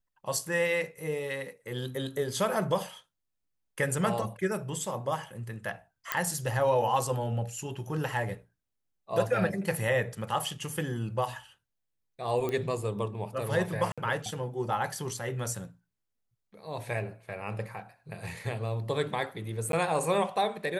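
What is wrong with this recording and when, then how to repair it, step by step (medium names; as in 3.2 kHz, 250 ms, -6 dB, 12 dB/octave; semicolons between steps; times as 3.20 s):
6.12 s: pop -10 dBFS
12.49 s: pop -19 dBFS
13.92–13.98 s: dropout 56 ms
19.72–19.73 s: dropout 12 ms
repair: de-click; interpolate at 13.92 s, 56 ms; interpolate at 19.72 s, 12 ms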